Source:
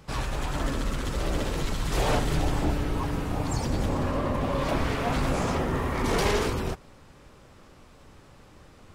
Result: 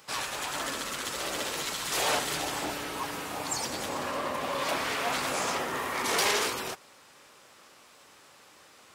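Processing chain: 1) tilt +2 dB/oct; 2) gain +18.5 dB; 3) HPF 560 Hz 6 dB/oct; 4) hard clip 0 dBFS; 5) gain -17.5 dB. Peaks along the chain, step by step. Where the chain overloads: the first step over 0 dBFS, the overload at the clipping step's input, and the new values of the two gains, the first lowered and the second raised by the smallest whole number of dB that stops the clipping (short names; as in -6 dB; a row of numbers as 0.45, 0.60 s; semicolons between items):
-12.0, +6.5, +5.5, 0.0, -17.5 dBFS; step 2, 5.5 dB; step 2 +12.5 dB, step 5 -11.5 dB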